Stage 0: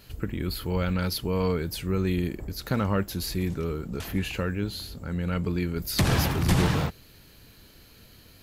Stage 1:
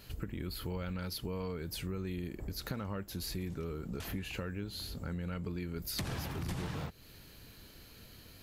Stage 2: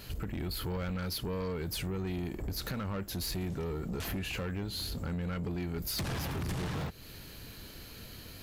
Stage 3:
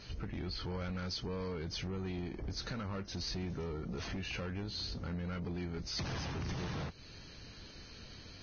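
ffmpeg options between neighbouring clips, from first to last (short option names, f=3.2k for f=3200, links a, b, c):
-af "acompressor=threshold=-34dB:ratio=6,volume=-2dB"
-af "asoftclip=type=tanh:threshold=-37.5dB,volume=7dB"
-af "volume=-4dB" -ar 16000 -c:a libvorbis -b:a 16k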